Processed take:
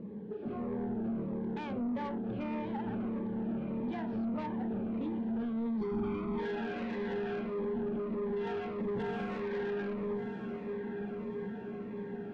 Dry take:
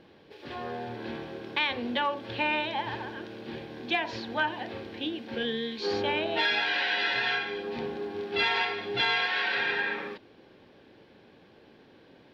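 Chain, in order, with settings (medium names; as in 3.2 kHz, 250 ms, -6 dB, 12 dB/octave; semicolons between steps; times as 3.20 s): 8.80–9.40 s: square wave that keeps the level; low-pass 1.1 kHz 12 dB/octave; in parallel at +2 dB: compression, threshold -47 dBFS, peak gain reduction 20 dB; on the sum: peaking EQ 190 Hz +10 dB 0.89 oct; small resonant body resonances 210/420 Hz, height 14 dB, ringing for 95 ms; on a send: echo that smears into a reverb 1196 ms, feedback 62%, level -12 dB; on the sum: peak limiter -18.5 dBFS, peak gain reduction 9 dB; saturation -26 dBFS, distortion -12 dB; 5.81–6.40 s: comb 0.9 ms, depth 89%; Shepard-style phaser falling 1.6 Hz; trim -4.5 dB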